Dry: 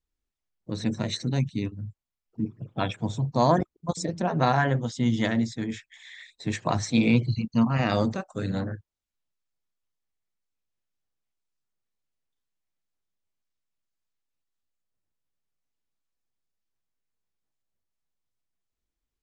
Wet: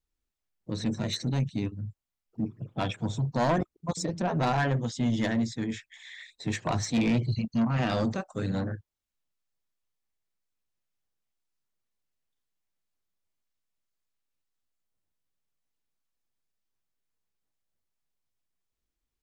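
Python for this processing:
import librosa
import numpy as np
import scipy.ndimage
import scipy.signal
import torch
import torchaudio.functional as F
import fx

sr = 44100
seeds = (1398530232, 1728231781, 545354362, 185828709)

y = 10.0 ** (-20.0 / 20.0) * np.tanh(x / 10.0 ** (-20.0 / 20.0))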